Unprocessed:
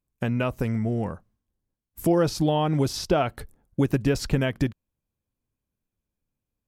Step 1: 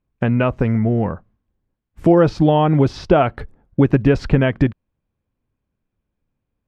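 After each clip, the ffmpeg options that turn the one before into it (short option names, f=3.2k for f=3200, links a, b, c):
-af "lowpass=2.4k,volume=8.5dB"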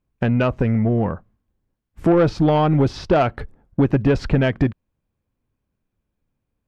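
-af "acontrast=81,volume=-7dB"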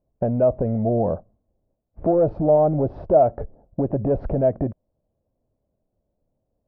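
-af "alimiter=limit=-18dB:level=0:latency=1:release=67,lowpass=f=630:t=q:w=4.9"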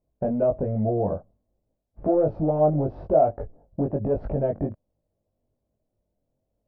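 -af "flanger=delay=19:depth=2.1:speed=1.2"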